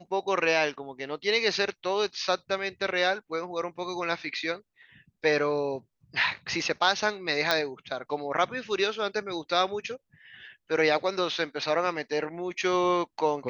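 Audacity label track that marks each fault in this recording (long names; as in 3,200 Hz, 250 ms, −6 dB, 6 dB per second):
7.510000	7.510000	click −10 dBFS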